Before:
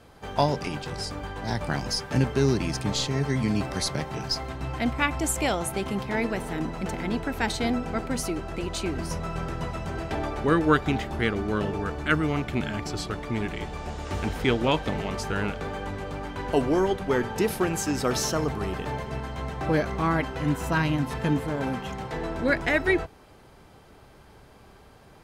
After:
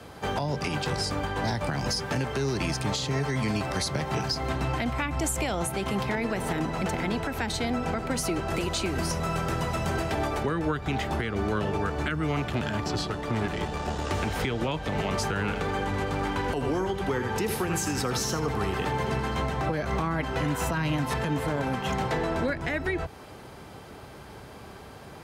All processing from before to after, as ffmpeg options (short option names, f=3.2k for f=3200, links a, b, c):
-filter_complex "[0:a]asettb=1/sr,asplit=3[a][b][c];[a]atrim=end=8.504[d];[b]atrim=start=8.5:end=10.43,asetpts=PTS-STARTPTS,afade=t=in:d=0.004:c=qsin,afade=t=out:st=1.926:d=0.004:c=qsin,acrossover=split=6900[e][f];[f]acompressor=threshold=-52dB:ratio=4:attack=1:release=60[g];[e][g]amix=inputs=2:normalize=0,highshelf=f=7.9k:g=11[h];[c]atrim=start=10.426[i];[d][h]acrossfade=d=0.004:c1=hsin:c2=qsin[j];[j][i]acrossfade=d=0.004:c1=qsin:c2=hsin,asettb=1/sr,asplit=3[k][l][m];[k]atrim=end=12.484[n];[l]atrim=start=12.48:end=14.11,asetpts=PTS-STARTPTS,afade=t=in:d=0.004:c=qsin,afade=t=out:st=1.626:d=0.004:c=qsin,acrossover=split=6000[o][p];[p]acompressor=threshold=-53dB:ratio=4:attack=1:release=60[q];[o][q]amix=inputs=2:normalize=0,bandreject=f=2.2k:w=8.2,aeval=exprs='(tanh(14.1*val(0)+0.6)-tanh(0.6))/14.1':c=same[r];[m]atrim=start=14.106[s];[n][r]acrossfade=d=0.004:c1=hsin:c2=qsin[t];[t][s]acrossfade=d=0.004:c1=qsin:c2=hsin,asettb=1/sr,asplit=3[u][v][w];[u]atrim=end=15.394[x];[v]atrim=start=15.39:end=19.41,asetpts=PTS-STARTPTS,afade=t=in:d=0.004:c=qsin,afade=t=out:st=4.016:d=0.004:c=qsin,bandreject=f=620:w=7.1,aecho=1:1:82:0.316,atrim=end_sample=177282[y];[w]atrim=start=19.406[z];[x][y]acrossfade=d=0.004:c1=hsin:c2=qsin[aa];[aa][z]acrossfade=d=0.004:c1=qsin:c2=hsin,highpass=65,acrossover=split=170|400[ab][ac][ad];[ab]acompressor=threshold=-33dB:ratio=4[ae];[ac]acompressor=threshold=-41dB:ratio=4[af];[ad]acompressor=threshold=-31dB:ratio=4[ag];[ae][af][ag]amix=inputs=3:normalize=0,alimiter=level_in=2.5dB:limit=-24dB:level=0:latency=1:release=186,volume=-2.5dB,volume=8dB"